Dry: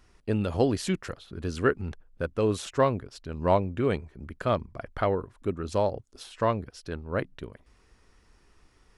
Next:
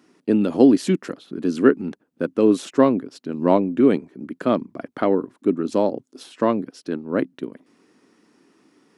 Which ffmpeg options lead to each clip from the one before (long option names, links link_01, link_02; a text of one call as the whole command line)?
ffmpeg -i in.wav -af "highpass=frequency=160:width=0.5412,highpass=frequency=160:width=1.3066,equalizer=frequency=280:width=1.4:gain=14,volume=2dB" out.wav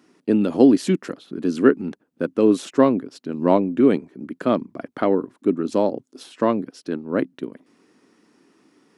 ffmpeg -i in.wav -af anull out.wav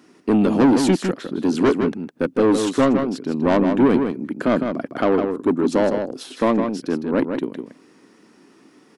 ffmpeg -i in.wav -filter_complex "[0:a]asoftclip=type=tanh:threshold=-16.5dB,asplit=2[link_01][link_02];[link_02]adelay=157.4,volume=-6dB,highshelf=frequency=4000:gain=-3.54[link_03];[link_01][link_03]amix=inputs=2:normalize=0,volume=5.5dB" out.wav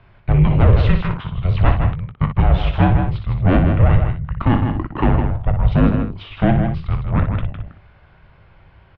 ffmpeg -i in.wav -af "highpass=frequency=190:width_type=q:width=0.5412,highpass=frequency=190:width_type=q:width=1.307,lowpass=frequency=3600:width_type=q:width=0.5176,lowpass=frequency=3600:width_type=q:width=0.7071,lowpass=frequency=3600:width_type=q:width=1.932,afreqshift=-360,aecho=1:1:19|60:0.266|0.398,volume=3.5dB" out.wav